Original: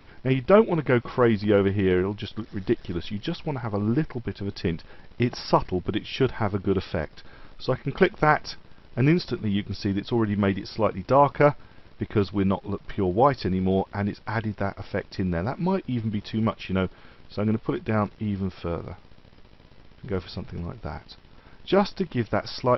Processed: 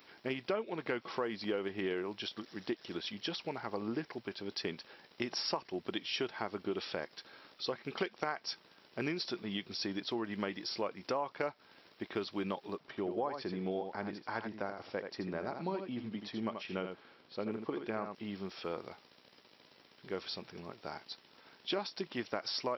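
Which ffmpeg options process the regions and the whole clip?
ffmpeg -i in.wav -filter_complex "[0:a]asettb=1/sr,asplit=3[link_01][link_02][link_03];[link_01]atrim=end=12.774[link_04];[link_02]atrim=start=12.77:end=18.15,asetpts=PTS-STARTPTS,afade=type=in:duration=0.004:curve=qsin,afade=type=out:start_time=5.376:duration=0.004:curve=qsin,highshelf=frequency=2000:gain=-8.5,aecho=1:1:81:0.398,atrim=end_sample=237258[link_05];[link_03]atrim=start=18.146[link_06];[link_04][link_05]acrossfade=duration=0.004:curve1=hsin:curve2=qsin[link_07];[link_07][link_06]acrossfade=duration=0.004:curve1=qsin:curve2=hsin,highpass=290,aemphasis=mode=production:type=75kf,acompressor=threshold=-25dB:ratio=6,volume=-7dB" out.wav

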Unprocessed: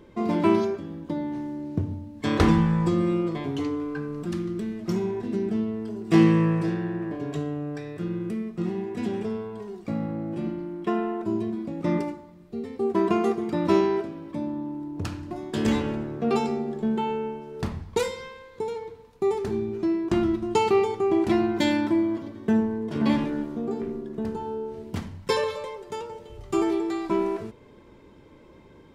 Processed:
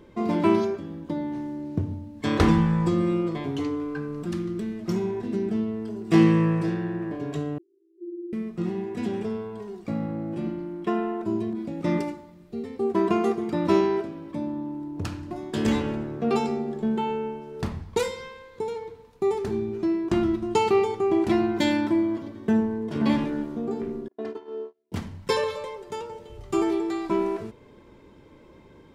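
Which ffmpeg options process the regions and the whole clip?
ffmpeg -i in.wav -filter_complex "[0:a]asettb=1/sr,asplit=3[link_01][link_02][link_03];[link_01]atrim=end=7.584[link_04];[link_02]atrim=start=7.58:end=8.33,asetpts=PTS-STARTPTS,afade=type=in:duration=0.004:curve=qsin,afade=type=out:start_time=0.746:duration=0.004:curve=qsin,aeval=exprs='clip(val(0),-1,0.0299)':channel_layout=same,asuperpass=centerf=360:order=12:qfactor=6[link_05];[link_03]atrim=start=8.326[link_06];[link_04][link_05]acrossfade=duration=0.004:curve1=hsin:curve2=qsin[link_07];[link_07][link_06]acrossfade=duration=0.004:curve1=qsin:curve2=hsin,asettb=1/sr,asplit=3[link_08][link_09][link_10];[link_08]atrim=end=11.534[link_11];[link_09]atrim=start=11.53:end=12.63,asetpts=PTS-STARTPTS,afade=type=in:duration=0.004:curve=qsin,afade=type=out:start_time=1.096:duration=0.004:curve=qsin,bandreject=frequency=1100:width=16,adynamicequalizer=threshold=0.00631:dfrequency=1900:dqfactor=0.7:tfrequency=1900:tqfactor=0.7:attack=5:release=100:ratio=0.375:range=2:mode=boostabove:tftype=highshelf[link_12];[link_10]atrim=start=12.626[link_13];[link_11][link_12]acrossfade=duration=0.004:curve1=hsin:curve2=qsin[link_14];[link_14][link_13]acrossfade=duration=0.004:curve1=qsin:curve2=hsin,asettb=1/sr,asplit=3[link_15][link_16][link_17];[link_15]atrim=end=24.084[link_18];[link_16]atrim=start=24.08:end=24.92,asetpts=PTS-STARTPTS,afade=type=in:duration=0.004:curve=qsin,afade=type=out:start_time=0.836:duration=0.004:curve=qsin,agate=range=-38dB:threshold=-32dB:ratio=16:release=100:detection=peak,highpass=320,lowpass=4600,aecho=1:1:2.9:0.91,atrim=end_sample=37044[link_19];[link_17]atrim=start=24.916[link_20];[link_18][link_19]acrossfade=duration=0.004:curve1=hsin:curve2=qsin[link_21];[link_21][link_20]acrossfade=duration=0.004:curve1=qsin:curve2=hsin" out.wav

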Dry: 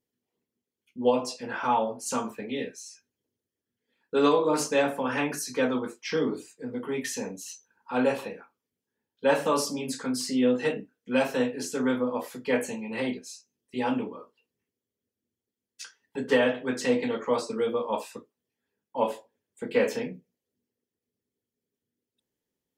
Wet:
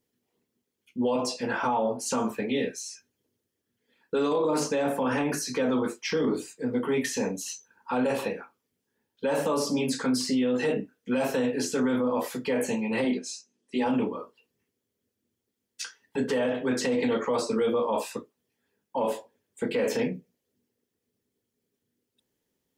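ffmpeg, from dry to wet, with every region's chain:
ffmpeg -i in.wav -filter_complex "[0:a]asettb=1/sr,asplit=3[link_01][link_02][link_03];[link_01]atrim=end=13.044[link_04];[link_02]atrim=start=13.04:end=13.86,asetpts=PTS-STARTPTS,afade=type=in:duration=0.004:curve=qsin,afade=type=out:start_time=0.816:duration=0.004:curve=qsin,lowpass=frequency=9300:width=0.5412,lowpass=frequency=9300:width=1.3066,lowshelf=frequency=150:width_type=q:width=1.5:gain=-10.5[link_05];[link_03]atrim=start=13.856[link_06];[link_04][link_05]acrossfade=duration=0.004:curve1=hsin:curve2=qsin[link_07];[link_07][link_06]acrossfade=duration=0.004:curve1=qsin:curve2=hsin,acrossover=split=920|6200[link_08][link_09][link_10];[link_08]acompressor=threshold=-23dB:ratio=4[link_11];[link_09]acompressor=threshold=-38dB:ratio=4[link_12];[link_10]acompressor=threshold=-46dB:ratio=4[link_13];[link_11][link_12][link_13]amix=inputs=3:normalize=0,alimiter=level_in=1dB:limit=-24dB:level=0:latency=1:release=11,volume=-1dB,volume=6.5dB" out.wav

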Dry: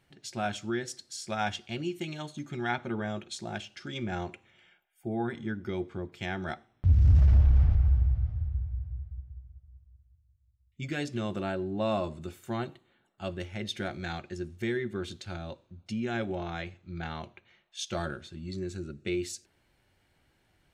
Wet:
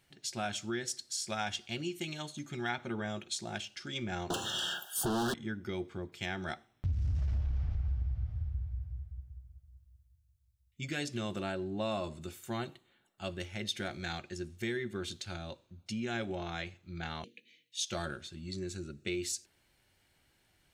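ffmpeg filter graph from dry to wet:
ffmpeg -i in.wav -filter_complex "[0:a]asettb=1/sr,asplit=3[link_01][link_02][link_03];[link_01]atrim=end=4.304[link_04];[link_02]atrim=start=4.3:end=5.34,asetpts=PTS-STARTPTS,afade=type=in:duration=0.004:curve=qsin,afade=type=out:start_time=1.036:duration=0.004:curve=qsin,bass=frequency=250:gain=9,treble=frequency=4000:gain=11,asplit=2[link_05][link_06];[link_06]highpass=frequency=720:poles=1,volume=40dB,asoftclip=type=tanh:threshold=-18.5dB[link_07];[link_05][link_07]amix=inputs=2:normalize=0,lowpass=frequency=3100:poles=1,volume=-6dB,asuperstop=centerf=2200:order=8:qfactor=1.8[link_08];[link_03]atrim=start=5.336[link_09];[link_04][link_08]acrossfade=duration=0.004:curve1=hsin:curve2=qsin[link_10];[link_10][link_09]acrossfade=duration=0.004:curve1=qsin:curve2=hsin,asettb=1/sr,asplit=3[link_11][link_12][link_13];[link_11]atrim=end=17.244[link_14];[link_12]atrim=start=17.24:end=17.83,asetpts=PTS-STARTPTS,afade=type=in:duration=0.004:curve=qsin,afade=type=out:start_time=0.586:duration=0.004:curve=qsin,afreqshift=120,asuperstop=centerf=980:order=8:qfactor=0.63,asplit=2[link_15][link_16];[link_16]adelay=17,volume=-12dB[link_17];[link_15][link_17]amix=inputs=2:normalize=0,atrim=end_sample=26019[link_18];[link_13]atrim=start=17.826[link_19];[link_14][link_18]acrossfade=duration=0.004:curve1=hsin:curve2=qsin[link_20];[link_20][link_19]acrossfade=duration=0.004:curve1=qsin:curve2=hsin,highshelf=frequency=2700:gain=9.5,acompressor=threshold=-26dB:ratio=5,volume=-4dB" out.wav

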